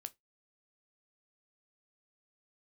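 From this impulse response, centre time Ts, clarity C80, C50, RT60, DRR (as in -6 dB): 2 ms, 38.0 dB, 27.0 dB, 0.15 s, 11.0 dB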